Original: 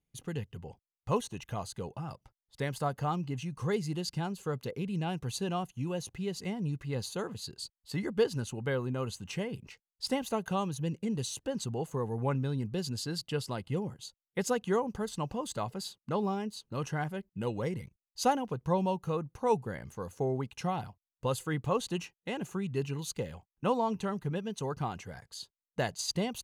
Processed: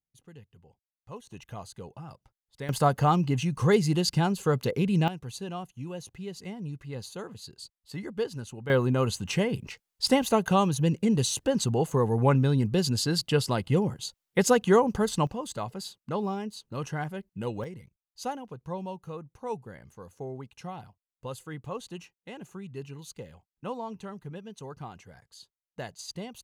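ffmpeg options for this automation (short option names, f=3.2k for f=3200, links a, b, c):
-af "asetnsamples=n=441:p=0,asendcmd='1.27 volume volume -3.5dB;2.69 volume volume 9.5dB;5.08 volume volume -3dB;8.7 volume volume 9dB;15.27 volume volume 1dB;17.64 volume volume -6.5dB',volume=-13dB"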